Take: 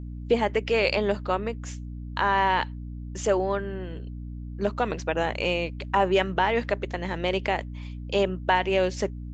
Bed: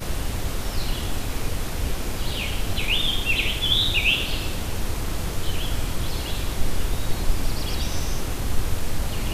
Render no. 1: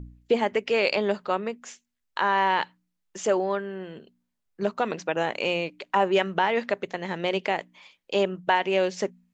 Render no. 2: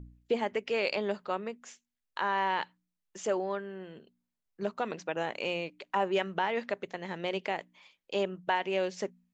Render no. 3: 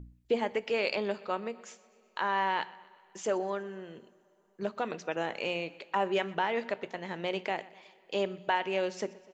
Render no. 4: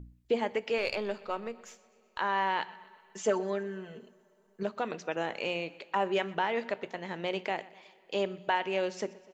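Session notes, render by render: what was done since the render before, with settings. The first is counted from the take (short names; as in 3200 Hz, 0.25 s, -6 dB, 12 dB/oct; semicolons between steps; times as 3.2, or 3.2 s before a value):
de-hum 60 Hz, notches 5
gain -7 dB
feedback echo 0.124 s, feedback 53%, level -21 dB; two-slope reverb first 0.3 s, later 4.2 s, from -22 dB, DRR 15 dB
0.78–2.18 half-wave gain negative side -3 dB; 2.68–4.63 comb 4.6 ms, depth 78%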